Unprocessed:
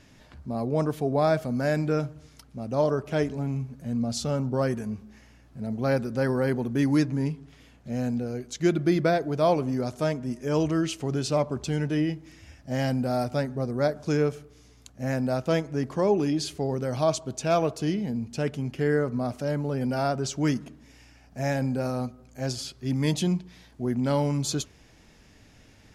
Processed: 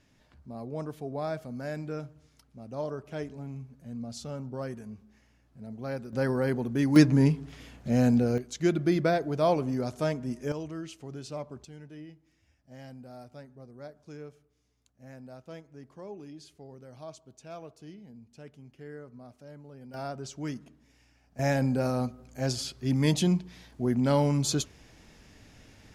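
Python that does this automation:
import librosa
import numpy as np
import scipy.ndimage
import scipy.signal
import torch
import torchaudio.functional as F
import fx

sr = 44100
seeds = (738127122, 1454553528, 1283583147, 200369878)

y = fx.gain(x, sr, db=fx.steps((0.0, -10.5), (6.13, -2.5), (6.96, 5.5), (8.38, -2.5), (10.52, -13.0), (11.65, -20.0), (19.94, -10.5), (21.39, 0.5)))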